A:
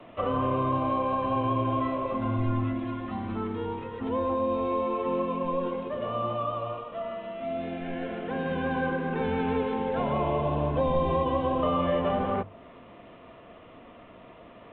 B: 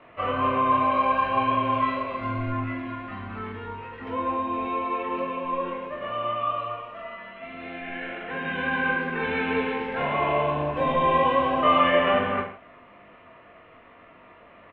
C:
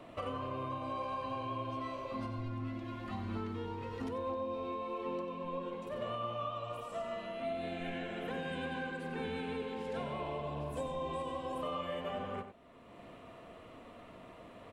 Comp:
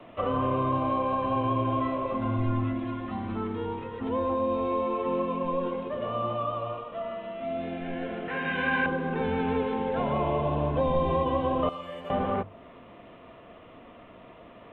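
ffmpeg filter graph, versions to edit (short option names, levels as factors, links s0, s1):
-filter_complex "[0:a]asplit=3[s0][s1][s2];[s0]atrim=end=8.282[s3];[1:a]atrim=start=8.278:end=8.862[s4];[s1]atrim=start=8.858:end=11.692[s5];[2:a]atrim=start=11.688:end=12.102[s6];[s2]atrim=start=12.098[s7];[s3][s4]acrossfade=d=0.004:c1=hsin:c2=hsin[s8];[s8][s5]acrossfade=d=0.004:c1=hsin:c2=hsin[s9];[s9][s6]acrossfade=d=0.004:c1=hsin:c2=hsin[s10];[s10][s7]acrossfade=d=0.004:c1=hsin:c2=hsin"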